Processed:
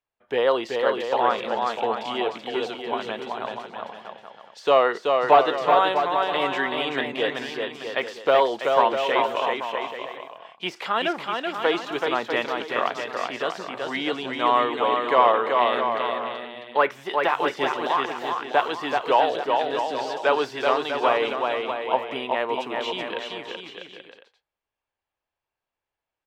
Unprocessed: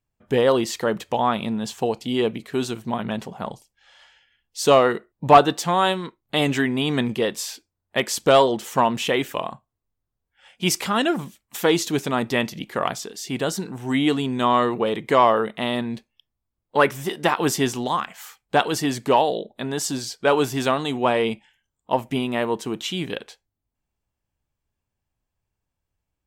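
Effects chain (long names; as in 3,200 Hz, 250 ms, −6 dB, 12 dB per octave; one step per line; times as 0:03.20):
de-essing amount 65%
three-way crossover with the lows and the highs turned down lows −20 dB, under 400 Hz, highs −19 dB, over 4,400 Hz
on a send: bouncing-ball delay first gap 380 ms, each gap 0.7×, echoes 5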